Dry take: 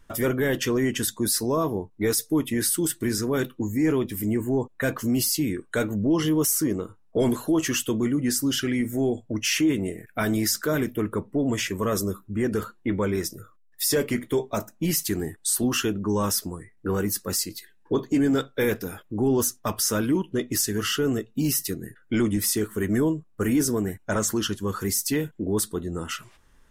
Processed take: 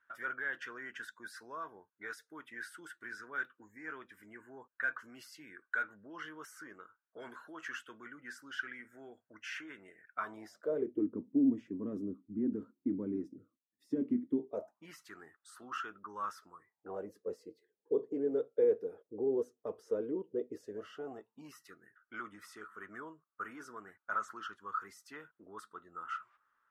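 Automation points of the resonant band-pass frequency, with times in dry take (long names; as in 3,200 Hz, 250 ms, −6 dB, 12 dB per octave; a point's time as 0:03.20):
resonant band-pass, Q 7
0:10.07 1,500 Hz
0:11.09 270 Hz
0:14.41 270 Hz
0:14.84 1,300 Hz
0:16.53 1,300 Hz
0:17.19 460 Hz
0:20.57 460 Hz
0:21.64 1,300 Hz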